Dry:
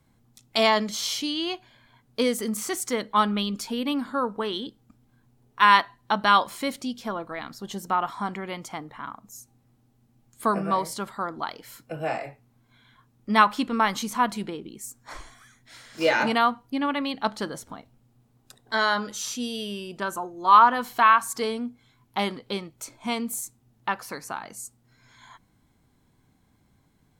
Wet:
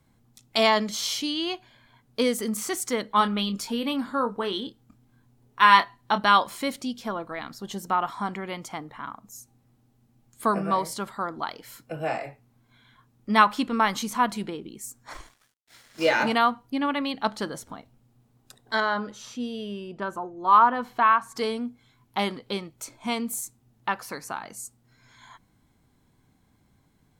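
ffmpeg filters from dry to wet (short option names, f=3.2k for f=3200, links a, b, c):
-filter_complex "[0:a]asettb=1/sr,asplit=3[a][b][c];[a]atrim=end=3.184[d];[b]atrim=start=3.18:end=6.2,asetpts=PTS-STARTPTS,afade=t=in:d=0.004:c=qsin,afade=t=out:st=3.016:d=0.004:c=qsin,asplit=2[e][f];[f]adelay=26,volume=-9dB[g];[e][g]amix=inputs=2:normalize=0,atrim=end_sample=133182[h];[c]atrim=start=6.196[i];[d][h]acrossfade=d=0.004:c1=hsin:c2=qsin[j];[j][i]acrossfade=d=0.004:c1=qsin:c2=hsin,asettb=1/sr,asplit=3[k][l][m];[k]atrim=end=15.134[n];[l]atrim=start=15.13:end=16.35,asetpts=PTS-STARTPTS,afade=t=in:d=0.004:c=qsin,afade=t=out:st=1.216:d=0.004:c=qsin,aeval=exprs='sgn(val(0))*max(abs(val(0))-0.00299,0)':c=same[o];[m]atrim=start=16.346[p];[n][o]acrossfade=d=0.004:c1=hsin:c2=qsin[q];[q][p]acrossfade=d=0.004:c1=qsin:c2=hsin,asettb=1/sr,asplit=3[r][s][t];[r]atrim=end=18.804[u];[s]atrim=start=18.8:end=21.36,asetpts=PTS-STARTPTS,afade=t=in:d=0.004:c=qsin,afade=t=out:st=2.556:d=0.004:c=qsin,lowpass=f=1.4k:p=1[v];[t]atrim=start=21.356[w];[u][v]acrossfade=d=0.004:c1=hsin:c2=qsin[x];[x][w]acrossfade=d=0.004:c1=qsin:c2=hsin"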